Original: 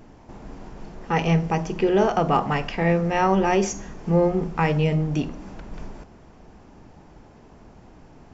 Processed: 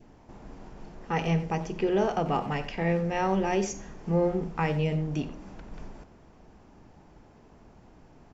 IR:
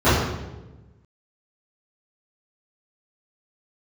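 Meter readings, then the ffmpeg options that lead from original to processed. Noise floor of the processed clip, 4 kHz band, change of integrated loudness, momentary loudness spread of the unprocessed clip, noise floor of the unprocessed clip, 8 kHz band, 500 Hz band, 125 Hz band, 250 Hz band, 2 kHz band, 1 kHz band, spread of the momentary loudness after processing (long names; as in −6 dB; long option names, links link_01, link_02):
−55 dBFS, −6.0 dB, −6.0 dB, 21 LU, −49 dBFS, can't be measured, −6.0 dB, −6.0 dB, −6.0 dB, −6.5 dB, −7.0 dB, 20 LU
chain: -filter_complex "[0:a]adynamicequalizer=threshold=0.0112:dfrequency=1200:dqfactor=1.9:tfrequency=1200:tqfactor=1.9:attack=5:release=100:ratio=0.375:range=3:mode=cutabove:tftype=bell,asplit=2[link_01][link_02];[link_02]adelay=90,highpass=300,lowpass=3400,asoftclip=type=hard:threshold=-17.5dB,volume=-13dB[link_03];[link_01][link_03]amix=inputs=2:normalize=0,volume=-6dB"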